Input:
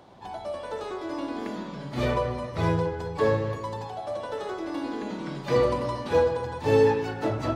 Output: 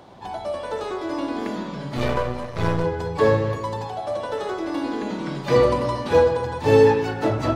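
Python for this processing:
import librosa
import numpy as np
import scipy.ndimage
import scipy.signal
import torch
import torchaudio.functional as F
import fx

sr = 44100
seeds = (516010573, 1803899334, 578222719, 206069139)

y = fx.halfwave_gain(x, sr, db=-12.0, at=(1.97, 2.84))
y = y * 10.0 ** (5.5 / 20.0)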